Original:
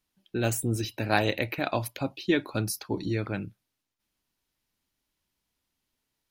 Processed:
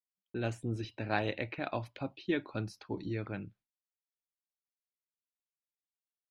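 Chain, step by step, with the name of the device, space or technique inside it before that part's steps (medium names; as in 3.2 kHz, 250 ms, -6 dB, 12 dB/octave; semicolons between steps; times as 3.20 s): hearing-loss simulation (low-pass 3.5 kHz 12 dB/octave; expander -50 dBFS); trim -7.5 dB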